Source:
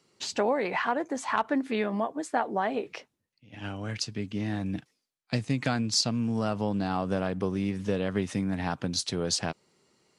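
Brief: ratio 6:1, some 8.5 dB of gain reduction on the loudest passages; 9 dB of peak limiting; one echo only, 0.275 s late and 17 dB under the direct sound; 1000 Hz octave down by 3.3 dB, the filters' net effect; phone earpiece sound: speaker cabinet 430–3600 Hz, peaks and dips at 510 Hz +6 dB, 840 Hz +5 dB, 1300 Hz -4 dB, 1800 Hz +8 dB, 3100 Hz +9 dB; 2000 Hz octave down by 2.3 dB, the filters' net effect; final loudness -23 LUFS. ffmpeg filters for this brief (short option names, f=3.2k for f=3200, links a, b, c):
-af "equalizer=f=1k:t=o:g=-7,equalizer=f=2k:t=o:g=-6.5,acompressor=threshold=-33dB:ratio=6,alimiter=level_in=4.5dB:limit=-24dB:level=0:latency=1,volume=-4.5dB,highpass=430,equalizer=f=510:t=q:w=4:g=6,equalizer=f=840:t=q:w=4:g=5,equalizer=f=1.3k:t=q:w=4:g=-4,equalizer=f=1.8k:t=q:w=4:g=8,equalizer=f=3.1k:t=q:w=4:g=9,lowpass=f=3.6k:w=0.5412,lowpass=f=3.6k:w=1.3066,aecho=1:1:275:0.141,volume=18.5dB"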